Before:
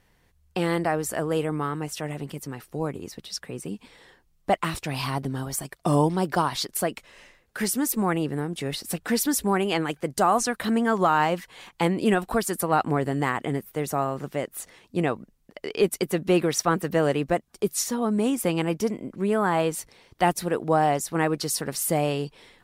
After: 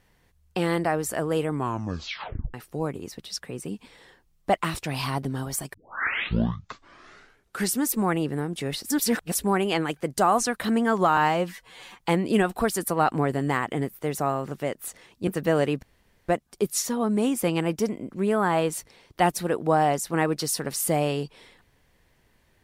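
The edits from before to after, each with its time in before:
0:01.51: tape stop 1.03 s
0:05.74: tape start 2.00 s
0:08.90–0:09.35: reverse
0:11.17–0:11.72: time-stretch 1.5×
0:15.00–0:16.75: remove
0:17.30: splice in room tone 0.46 s

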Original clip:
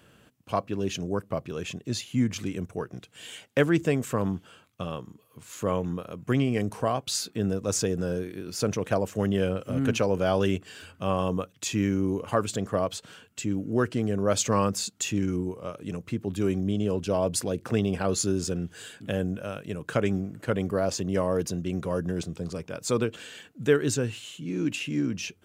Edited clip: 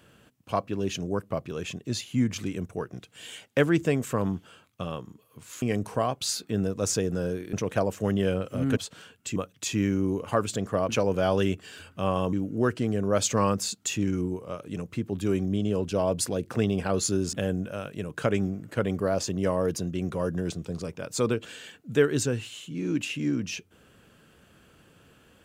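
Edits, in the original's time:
0:05.62–0:06.48: remove
0:08.39–0:08.68: remove
0:09.92–0:11.36: swap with 0:12.89–0:13.48
0:18.48–0:19.04: remove

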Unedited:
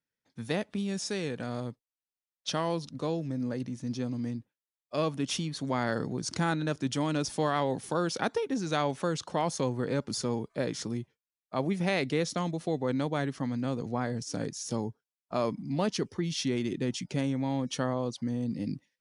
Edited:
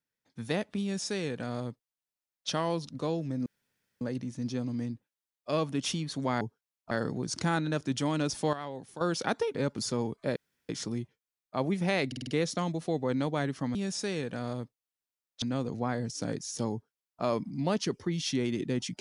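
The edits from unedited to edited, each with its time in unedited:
0:00.82–0:02.49: duplicate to 0:13.54
0:03.46: splice in room tone 0.55 s
0:07.48–0:07.96: clip gain −10.5 dB
0:08.50–0:09.87: remove
0:10.68: splice in room tone 0.33 s
0:12.06: stutter 0.05 s, 5 plays
0:14.84–0:15.34: duplicate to 0:05.86

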